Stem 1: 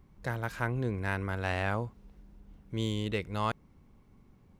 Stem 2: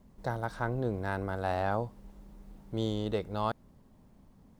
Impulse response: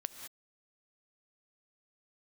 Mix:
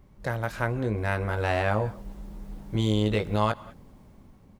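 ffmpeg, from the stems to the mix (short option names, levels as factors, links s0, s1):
-filter_complex "[0:a]equalizer=f=580:t=o:w=0.33:g=5.5,volume=1.12,asplit=2[s0][s1];[s1]volume=0.422[s2];[1:a]alimiter=level_in=2:limit=0.0631:level=0:latency=1,volume=0.501,dynaudnorm=f=400:g=5:m=4.47,adelay=19,volume=0.631[s3];[2:a]atrim=start_sample=2205[s4];[s2][s4]afir=irnorm=-1:irlink=0[s5];[s0][s3][s5]amix=inputs=3:normalize=0"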